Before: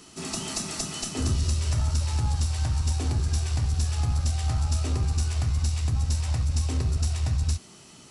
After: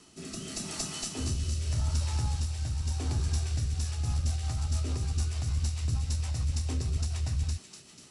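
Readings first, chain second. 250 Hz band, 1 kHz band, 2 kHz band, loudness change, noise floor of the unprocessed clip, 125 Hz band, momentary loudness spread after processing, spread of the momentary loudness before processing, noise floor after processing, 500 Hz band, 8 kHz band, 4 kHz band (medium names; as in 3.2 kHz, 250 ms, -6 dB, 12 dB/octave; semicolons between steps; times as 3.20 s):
-5.0 dB, -7.0 dB, -5.5 dB, -5.0 dB, -50 dBFS, -5.0 dB, 5 LU, 4 LU, -53 dBFS, -5.5 dB, -4.5 dB, -4.5 dB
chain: rotary cabinet horn 0.85 Hz, later 6.7 Hz, at 3.47 s; feedback echo behind a high-pass 245 ms, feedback 56%, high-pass 1.9 kHz, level -5.5 dB; trim -3.5 dB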